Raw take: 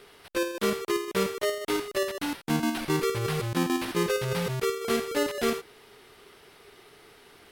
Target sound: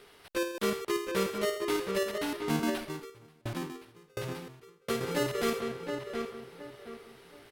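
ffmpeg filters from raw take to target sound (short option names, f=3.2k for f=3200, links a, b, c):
-filter_complex "[0:a]asplit=2[a][b];[b]adelay=720,lowpass=f=2.6k:p=1,volume=-5dB,asplit=2[c][d];[d]adelay=720,lowpass=f=2.6k:p=1,volume=0.33,asplit=2[e][f];[f]adelay=720,lowpass=f=2.6k:p=1,volume=0.33,asplit=2[g][h];[h]adelay=720,lowpass=f=2.6k:p=1,volume=0.33[i];[a][c][e][g][i]amix=inputs=5:normalize=0,asettb=1/sr,asplit=3[j][k][l];[j]atrim=end=2.744[m];[k]atrim=start=2.74:end=5.01,asetpts=PTS-STARTPTS,afade=t=in:d=0.004:c=qsin,afade=t=out:st=2.266:d=0.004:c=qsin,aeval=exprs='val(0)*pow(10,-36*if(lt(mod(1.4*n/s,1),2*abs(1.4)/1000),1-mod(1.4*n/s,1)/(2*abs(1.4)/1000),(mod(1.4*n/s,1)-2*abs(1.4)/1000)/(1-2*abs(1.4)/1000))/20)':c=same[n];[l]atrim=start=5.006[o];[m][n]acrossfade=d=0.004:c1=hsin:c2=qsin[p];[p][o]acrossfade=d=0.004:c1=qsin:c2=hsin,volume=-3.5dB"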